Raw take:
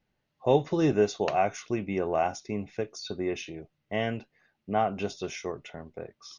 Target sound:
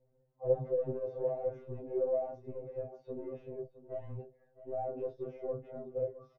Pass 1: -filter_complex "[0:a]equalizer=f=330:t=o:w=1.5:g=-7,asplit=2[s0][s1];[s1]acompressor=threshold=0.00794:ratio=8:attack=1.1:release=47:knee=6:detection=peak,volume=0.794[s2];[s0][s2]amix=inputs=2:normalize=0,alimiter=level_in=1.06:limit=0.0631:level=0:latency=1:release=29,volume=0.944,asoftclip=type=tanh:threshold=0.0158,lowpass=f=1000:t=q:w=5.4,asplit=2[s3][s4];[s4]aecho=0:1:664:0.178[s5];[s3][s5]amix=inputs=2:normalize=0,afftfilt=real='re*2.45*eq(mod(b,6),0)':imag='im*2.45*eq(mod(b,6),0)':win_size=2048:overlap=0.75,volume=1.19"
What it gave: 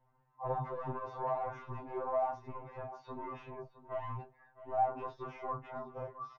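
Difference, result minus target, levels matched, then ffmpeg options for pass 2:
1 kHz band +13.5 dB
-filter_complex "[0:a]equalizer=f=330:t=o:w=1.5:g=-7,asplit=2[s0][s1];[s1]acompressor=threshold=0.00794:ratio=8:attack=1.1:release=47:knee=6:detection=peak,volume=0.794[s2];[s0][s2]amix=inputs=2:normalize=0,alimiter=level_in=1.06:limit=0.0631:level=0:latency=1:release=29,volume=0.944,asoftclip=type=tanh:threshold=0.0158,lowpass=f=500:t=q:w=5.4,asplit=2[s3][s4];[s4]aecho=0:1:664:0.178[s5];[s3][s5]amix=inputs=2:normalize=0,afftfilt=real='re*2.45*eq(mod(b,6),0)':imag='im*2.45*eq(mod(b,6),0)':win_size=2048:overlap=0.75,volume=1.19"

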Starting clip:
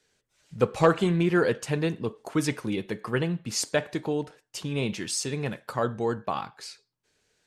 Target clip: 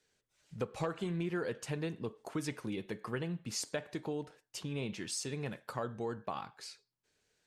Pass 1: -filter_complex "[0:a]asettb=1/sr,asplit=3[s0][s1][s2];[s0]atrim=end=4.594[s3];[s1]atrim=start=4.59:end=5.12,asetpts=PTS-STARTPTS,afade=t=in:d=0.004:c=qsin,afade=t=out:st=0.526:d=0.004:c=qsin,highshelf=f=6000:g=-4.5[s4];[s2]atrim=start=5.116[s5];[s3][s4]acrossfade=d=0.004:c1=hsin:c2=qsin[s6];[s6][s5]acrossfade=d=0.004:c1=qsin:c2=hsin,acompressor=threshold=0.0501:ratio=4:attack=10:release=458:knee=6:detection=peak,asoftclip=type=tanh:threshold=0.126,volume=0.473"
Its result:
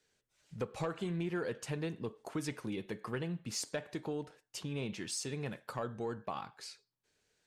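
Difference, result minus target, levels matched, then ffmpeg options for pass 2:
saturation: distortion +17 dB
-filter_complex "[0:a]asettb=1/sr,asplit=3[s0][s1][s2];[s0]atrim=end=4.594[s3];[s1]atrim=start=4.59:end=5.12,asetpts=PTS-STARTPTS,afade=t=in:d=0.004:c=qsin,afade=t=out:st=0.526:d=0.004:c=qsin,highshelf=f=6000:g=-4.5[s4];[s2]atrim=start=5.116[s5];[s3][s4]acrossfade=d=0.004:c1=hsin:c2=qsin[s6];[s6][s5]acrossfade=d=0.004:c1=qsin:c2=hsin,acompressor=threshold=0.0501:ratio=4:attack=10:release=458:knee=6:detection=peak,asoftclip=type=tanh:threshold=0.376,volume=0.473"

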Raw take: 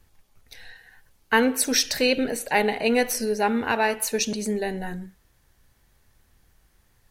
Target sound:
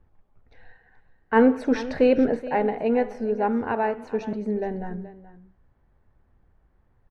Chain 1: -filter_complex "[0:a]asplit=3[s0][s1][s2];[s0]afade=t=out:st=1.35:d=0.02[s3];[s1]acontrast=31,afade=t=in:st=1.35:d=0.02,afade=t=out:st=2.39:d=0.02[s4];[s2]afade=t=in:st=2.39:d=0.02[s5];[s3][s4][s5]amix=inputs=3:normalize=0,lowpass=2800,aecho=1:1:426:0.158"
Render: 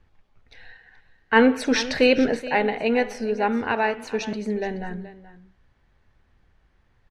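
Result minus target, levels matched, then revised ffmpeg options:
2 kHz band +7.0 dB
-filter_complex "[0:a]asplit=3[s0][s1][s2];[s0]afade=t=out:st=1.35:d=0.02[s3];[s1]acontrast=31,afade=t=in:st=1.35:d=0.02,afade=t=out:st=2.39:d=0.02[s4];[s2]afade=t=in:st=2.39:d=0.02[s5];[s3][s4][s5]amix=inputs=3:normalize=0,lowpass=1100,aecho=1:1:426:0.158"

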